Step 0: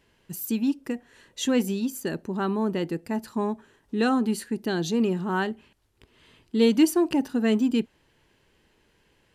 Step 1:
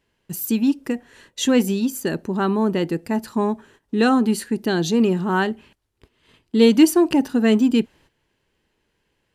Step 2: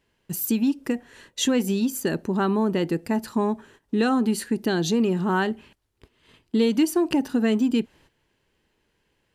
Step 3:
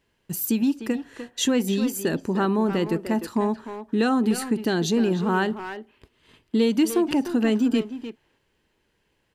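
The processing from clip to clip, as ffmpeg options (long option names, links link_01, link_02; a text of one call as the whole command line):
ffmpeg -i in.wav -af "agate=range=-12dB:threshold=-55dB:ratio=16:detection=peak,volume=6dB" out.wav
ffmpeg -i in.wav -af "acompressor=threshold=-19dB:ratio=3" out.wav
ffmpeg -i in.wav -filter_complex "[0:a]asplit=2[link_01][link_02];[link_02]adelay=300,highpass=300,lowpass=3400,asoftclip=type=hard:threshold=-20dB,volume=-8dB[link_03];[link_01][link_03]amix=inputs=2:normalize=0" out.wav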